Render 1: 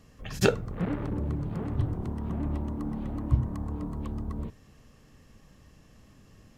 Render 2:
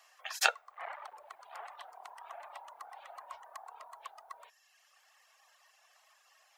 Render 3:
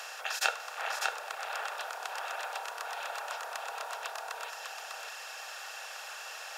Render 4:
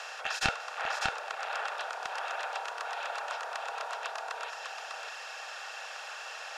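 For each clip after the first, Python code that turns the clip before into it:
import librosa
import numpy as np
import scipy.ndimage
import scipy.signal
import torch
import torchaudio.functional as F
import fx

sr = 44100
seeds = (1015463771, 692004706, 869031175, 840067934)

y1 = fx.dereverb_blind(x, sr, rt60_s=1.3)
y1 = scipy.signal.sosfilt(scipy.signal.ellip(4, 1.0, 60, 700.0, 'highpass', fs=sr, output='sos'), y1)
y1 = y1 * librosa.db_to_amplitude(3.0)
y2 = fx.bin_compress(y1, sr, power=0.4)
y2 = y2 + 10.0 ** (-4.5 / 20.0) * np.pad(y2, (int(599 * sr / 1000.0), 0))[:len(y2)]
y2 = y2 * librosa.db_to_amplitude(-3.5)
y3 = np.minimum(y2, 2.0 * 10.0 ** (-23.5 / 20.0) - y2)
y3 = fx.air_absorb(y3, sr, metres=71.0)
y3 = y3 * librosa.db_to_amplitude(2.5)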